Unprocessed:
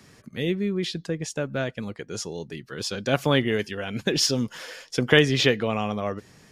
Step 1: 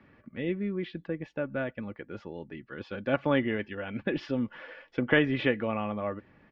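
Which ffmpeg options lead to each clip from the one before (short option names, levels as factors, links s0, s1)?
-af "lowpass=f=2500:w=0.5412,lowpass=f=2500:w=1.3066,aecho=1:1:3.5:0.38,volume=0.562"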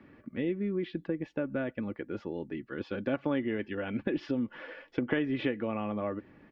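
-af "equalizer=f=310:w=1.4:g=7,acompressor=threshold=0.0355:ratio=3"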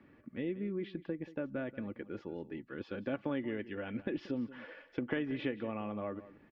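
-af "aecho=1:1:182:0.15,volume=0.531"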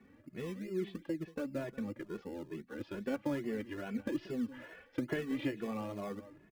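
-filter_complex "[0:a]asplit=2[s0][s1];[s1]acrusher=samples=25:mix=1:aa=0.000001:lfo=1:lforange=15:lforate=2.5,volume=0.299[s2];[s0][s2]amix=inputs=2:normalize=0,asplit=2[s3][s4];[s4]adelay=2.3,afreqshift=2.3[s5];[s3][s5]amix=inputs=2:normalize=1,volume=1.12"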